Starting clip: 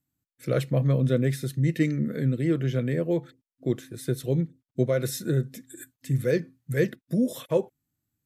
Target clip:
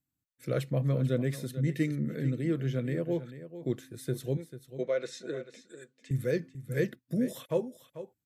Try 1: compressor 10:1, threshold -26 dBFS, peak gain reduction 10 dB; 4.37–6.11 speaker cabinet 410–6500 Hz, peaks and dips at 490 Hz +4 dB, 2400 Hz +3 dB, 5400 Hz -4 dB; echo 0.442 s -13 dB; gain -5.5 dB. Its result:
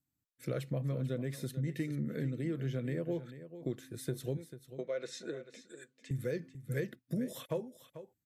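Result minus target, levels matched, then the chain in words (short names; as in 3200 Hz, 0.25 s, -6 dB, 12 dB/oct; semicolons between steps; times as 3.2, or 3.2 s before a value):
compressor: peak gain reduction +10 dB
4.37–6.11 speaker cabinet 410–6500 Hz, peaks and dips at 490 Hz +4 dB, 2400 Hz +3 dB, 5400 Hz -4 dB; echo 0.442 s -13 dB; gain -5.5 dB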